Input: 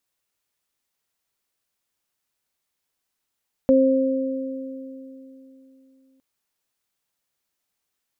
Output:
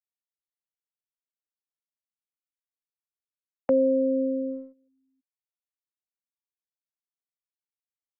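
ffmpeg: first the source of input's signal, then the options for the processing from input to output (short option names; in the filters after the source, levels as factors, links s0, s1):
-f lavfi -i "aevalsrc='0.178*pow(10,-3*t/3.49)*sin(2*PI*265*t)+0.211*pow(10,-3*t/2.65)*sin(2*PI*530*t)':d=2.51:s=44100"
-filter_complex "[0:a]afftfilt=real='re*gte(hypot(re,im),0.0891)':imag='im*gte(hypot(re,im),0.0891)':win_size=1024:overlap=0.75,agate=range=0.0355:threshold=0.0282:ratio=16:detection=peak,acrossover=split=130|490[s0][s1][s2];[s1]alimiter=limit=0.075:level=0:latency=1[s3];[s0][s3][s2]amix=inputs=3:normalize=0"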